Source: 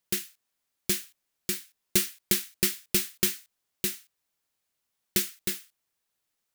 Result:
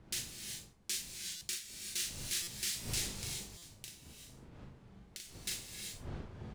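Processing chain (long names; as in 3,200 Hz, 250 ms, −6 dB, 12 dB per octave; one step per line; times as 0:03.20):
wind on the microphone 140 Hz −28 dBFS
first-order pre-emphasis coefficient 0.97
brickwall limiter −15.5 dBFS, peak gain reduction 10 dB
0:03.15–0:05.35: downward compressor 10 to 1, threshold −37 dBFS, peak gain reduction 13.5 dB
high-frequency loss of the air 83 metres
double-tracking delay 39 ms −4.5 dB
reverb whose tail is shaped and stops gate 410 ms rising, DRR 3.5 dB
buffer that repeats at 0:01.36/0:02.42/0:03.57, samples 256, times 8
wow of a warped record 33 1/3 rpm, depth 100 cents
level +4.5 dB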